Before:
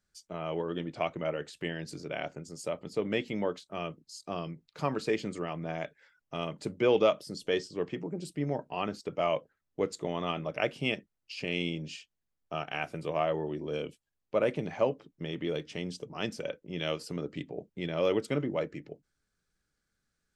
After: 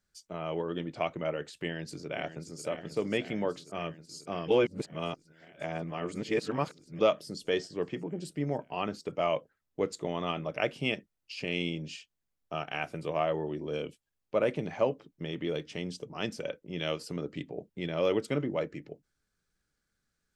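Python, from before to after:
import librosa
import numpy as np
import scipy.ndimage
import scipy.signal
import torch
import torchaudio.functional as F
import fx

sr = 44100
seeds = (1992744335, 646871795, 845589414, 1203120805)

y = fx.echo_throw(x, sr, start_s=1.58, length_s=1.05, ms=540, feedback_pct=80, wet_db=-11.0)
y = fx.edit(y, sr, fx.reverse_span(start_s=4.48, length_s=2.51), tone=tone)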